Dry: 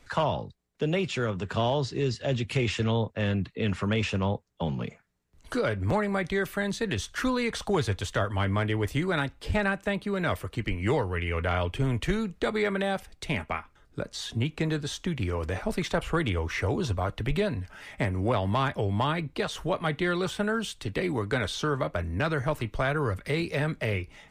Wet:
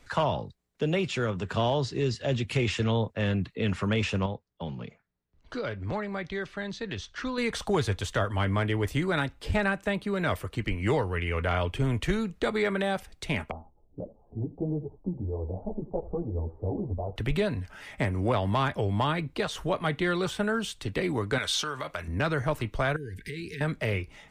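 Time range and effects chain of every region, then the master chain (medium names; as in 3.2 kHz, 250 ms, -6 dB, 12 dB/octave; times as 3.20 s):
4.26–7.38 s: four-pole ladder low-pass 6.4 kHz, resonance 25% + tape noise reduction on one side only decoder only
13.51–17.16 s: steep low-pass 830 Hz 48 dB/octave + delay 83 ms -18.5 dB + three-phase chorus
21.38–22.08 s: band-stop 1.8 kHz, Q 29 + compression 4:1, threshold -29 dBFS + tilt shelf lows -7.5 dB, about 790 Hz
22.96–23.61 s: compression 12:1, threshold -32 dBFS + brick-wall FIR band-stop 470–1500 Hz
whole clip: none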